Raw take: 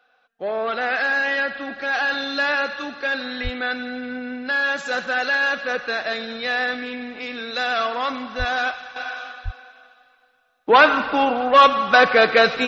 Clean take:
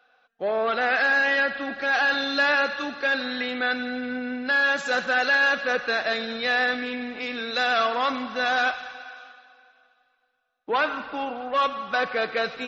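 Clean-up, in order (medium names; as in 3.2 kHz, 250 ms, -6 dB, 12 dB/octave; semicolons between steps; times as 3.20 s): de-plosive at 3.43/8.38/9.44 s; gain correction -11 dB, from 8.96 s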